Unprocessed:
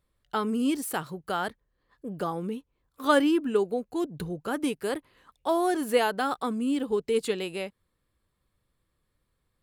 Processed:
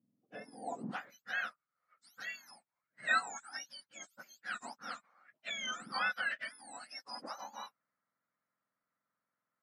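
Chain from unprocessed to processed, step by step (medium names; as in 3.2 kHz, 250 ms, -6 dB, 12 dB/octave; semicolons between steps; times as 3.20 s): spectrum inverted on a logarithmic axis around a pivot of 1.5 kHz; band-pass sweep 240 Hz -> 1.4 kHz, 0.09–1.18 s; trim +2 dB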